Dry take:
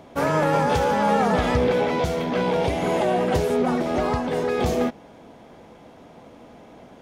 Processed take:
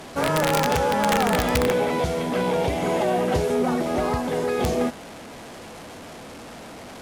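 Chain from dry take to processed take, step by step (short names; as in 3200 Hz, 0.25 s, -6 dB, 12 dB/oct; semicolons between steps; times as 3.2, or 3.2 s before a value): delta modulation 64 kbps, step -33.5 dBFS; added harmonics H 5 -36 dB, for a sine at -9.5 dBFS; wrapped overs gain 11.5 dB; gain -1 dB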